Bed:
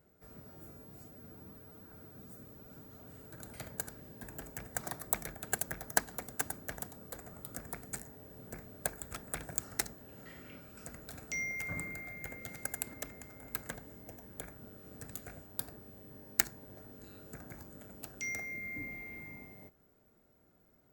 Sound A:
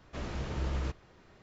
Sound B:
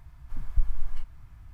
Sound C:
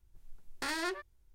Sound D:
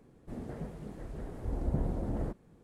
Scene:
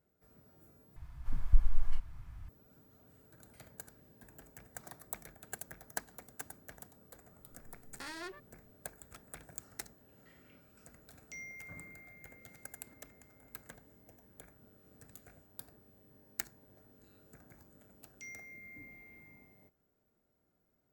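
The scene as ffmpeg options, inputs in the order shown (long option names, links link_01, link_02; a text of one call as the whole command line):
ffmpeg -i bed.wav -i cue0.wav -i cue1.wav -i cue2.wav -filter_complex "[0:a]volume=-10dB,asplit=2[link_01][link_02];[link_01]atrim=end=0.964[link_03];[2:a]atrim=end=1.53,asetpts=PTS-STARTPTS,volume=-0.5dB[link_04];[link_02]atrim=start=2.486[link_05];[3:a]atrim=end=1.34,asetpts=PTS-STARTPTS,volume=-9.5dB,afade=type=in:duration=0.004:curve=hsin,afade=type=out:start_time=1.336:duration=0.004:curve=hsin,adelay=325458S[link_06];[link_03][link_04]acrossfade=duration=0.004:curve1=hsin:curve2=hsin[link_07];[link_07][link_05]acrossfade=duration=0.004:curve1=hsin:curve2=hsin[link_08];[link_08][link_06]amix=inputs=2:normalize=0" out.wav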